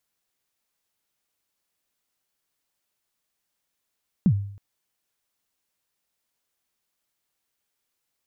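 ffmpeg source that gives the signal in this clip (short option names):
-f lavfi -i "aevalsrc='0.251*pow(10,-3*t/0.61)*sin(2*PI*(220*0.069/log(100/220)*(exp(log(100/220)*min(t,0.069)/0.069)-1)+100*max(t-0.069,0)))':d=0.32:s=44100"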